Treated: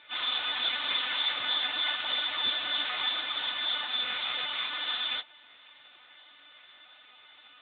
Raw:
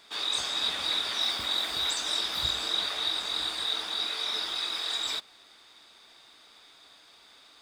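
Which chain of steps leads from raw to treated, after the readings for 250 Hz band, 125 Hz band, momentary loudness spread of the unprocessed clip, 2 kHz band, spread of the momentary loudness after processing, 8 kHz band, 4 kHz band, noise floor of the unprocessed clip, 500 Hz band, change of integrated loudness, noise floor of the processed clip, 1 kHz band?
-4.0 dB, under -10 dB, 3 LU, +4.5 dB, 3 LU, under -40 dB, -0.5 dB, -56 dBFS, -3.5 dB, -1.0 dB, -56 dBFS, +1.0 dB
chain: frequency quantiser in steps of 3 st; gain +2.5 dB; AMR-NB 5.15 kbps 8000 Hz

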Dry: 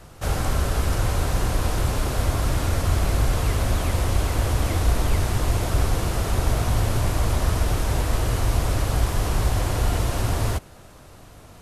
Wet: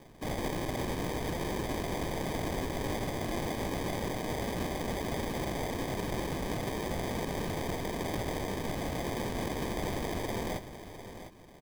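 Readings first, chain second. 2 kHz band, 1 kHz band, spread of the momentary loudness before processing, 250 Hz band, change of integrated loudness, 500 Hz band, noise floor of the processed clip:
-7.0 dB, -7.5 dB, 2 LU, -4.0 dB, -11.0 dB, -4.5 dB, -47 dBFS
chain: HPF 1000 Hz 24 dB/oct; sample-and-hold 32×; on a send: echo 0.703 s -11.5 dB

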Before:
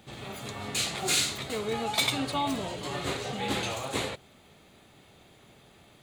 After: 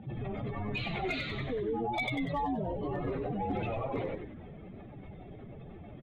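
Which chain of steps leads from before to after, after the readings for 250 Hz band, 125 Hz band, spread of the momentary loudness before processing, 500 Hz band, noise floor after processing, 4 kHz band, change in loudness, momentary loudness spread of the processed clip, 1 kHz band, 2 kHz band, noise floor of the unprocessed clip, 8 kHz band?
0.0 dB, +2.5 dB, 12 LU, -0.5 dB, -48 dBFS, -14.5 dB, -4.5 dB, 16 LU, -2.5 dB, -4.5 dB, -57 dBFS, under -30 dB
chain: spectral contrast raised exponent 2.4; LPF 2600 Hz 24 dB/oct; compressor 2.5:1, threshold -47 dBFS, peak gain reduction 13.5 dB; hard clip -35.5 dBFS, distortion -30 dB; on a send: frequency-shifting echo 95 ms, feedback 53%, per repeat -110 Hz, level -6.5 dB; on the sum: gain +9 dB

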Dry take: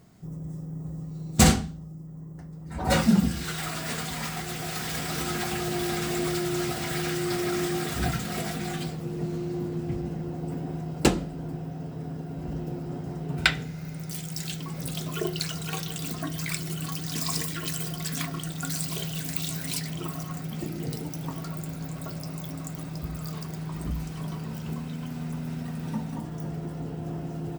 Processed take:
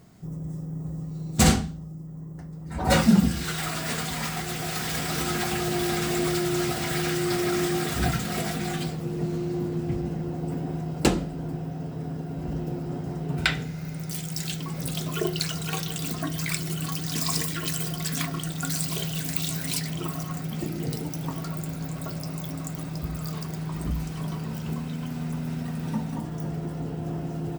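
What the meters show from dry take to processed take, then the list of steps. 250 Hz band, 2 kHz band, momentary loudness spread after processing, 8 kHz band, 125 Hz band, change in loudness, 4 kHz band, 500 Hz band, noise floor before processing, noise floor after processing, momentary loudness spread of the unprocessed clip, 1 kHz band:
+2.0 dB, +1.0 dB, 8 LU, +1.5 dB, +2.0 dB, +2.0 dB, +1.5 dB, +2.0 dB, -39 dBFS, -36 dBFS, 11 LU, +2.0 dB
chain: maximiser +8.5 dB; gain -6 dB

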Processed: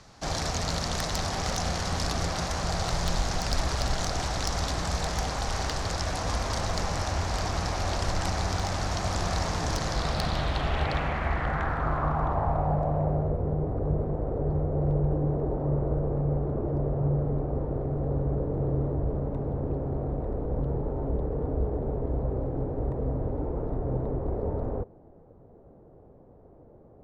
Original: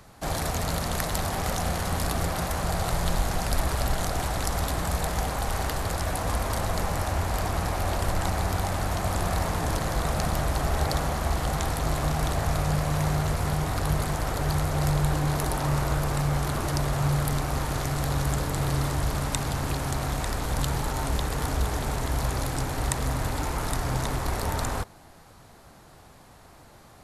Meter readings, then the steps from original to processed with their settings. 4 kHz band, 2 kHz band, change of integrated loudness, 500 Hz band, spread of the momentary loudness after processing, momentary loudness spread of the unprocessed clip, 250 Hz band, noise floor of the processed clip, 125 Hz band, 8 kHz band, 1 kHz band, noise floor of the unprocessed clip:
0.0 dB, -3.0 dB, -1.5 dB, +1.0 dB, 4 LU, 3 LU, -0.5 dB, -53 dBFS, -1.5 dB, -4.0 dB, -2.5 dB, -51 dBFS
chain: low-pass sweep 5700 Hz -> 470 Hz, 9.85–13.42; wavefolder -13.5 dBFS; gain -2 dB

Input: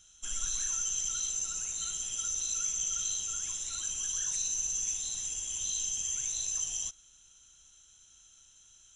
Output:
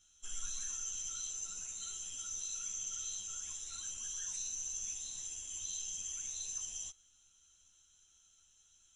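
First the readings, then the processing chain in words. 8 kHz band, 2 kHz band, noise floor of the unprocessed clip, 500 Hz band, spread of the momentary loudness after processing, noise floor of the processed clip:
-8.0 dB, -8.0 dB, -60 dBFS, n/a, 4 LU, -68 dBFS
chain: ensemble effect; gain -5 dB

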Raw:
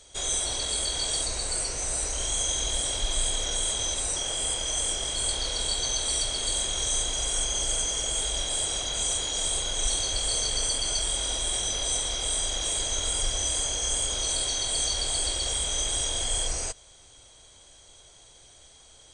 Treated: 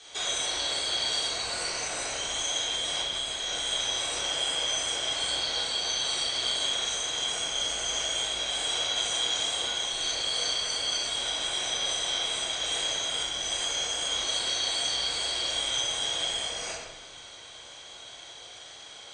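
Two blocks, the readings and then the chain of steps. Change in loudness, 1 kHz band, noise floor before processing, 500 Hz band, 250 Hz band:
-1.5 dB, +2.0 dB, -53 dBFS, -1.0 dB, -3.0 dB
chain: octaver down 1 oct, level -4 dB; LPF 4200 Hz 12 dB/oct; compressor, threshold -37 dBFS, peak gain reduction 15 dB; HPF 1200 Hz 6 dB/oct; shoebox room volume 630 m³, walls mixed, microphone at 3.6 m; gain +6 dB

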